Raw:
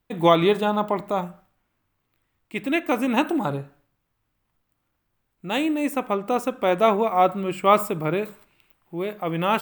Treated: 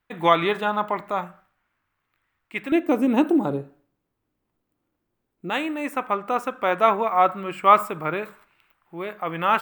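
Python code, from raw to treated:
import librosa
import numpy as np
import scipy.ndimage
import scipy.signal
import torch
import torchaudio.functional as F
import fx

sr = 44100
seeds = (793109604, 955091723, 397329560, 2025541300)

y = fx.peak_eq(x, sr, hz=fx.steps((0.0, 1600.0), (2.72, 340.0), (5.5, 1400.0)), db=12.5, octaves=1.9)
y = y * 10.0 ** (-7.0 / 20.0)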